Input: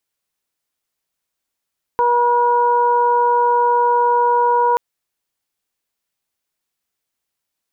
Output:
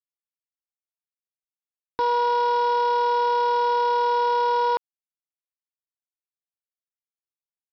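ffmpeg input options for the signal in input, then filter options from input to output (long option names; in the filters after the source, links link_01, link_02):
-f lavfi -i "aevalsrc='0.126*sin(2*PI*481*t)+0.224*sin(2*PI*962*t)+0.0316*sin(2*PI*1443*t)':duration=2.78:sample_rate=44100"
-af "equalizer=frequency=300:width=4.9:gain=8,alimiter=limit=-15.5dB:level=0:latency=1,aresample=11025,aeval=exprs='val(0)*gte(abs(val(0)),0.0316)':channel_layout=same,aresample=44100"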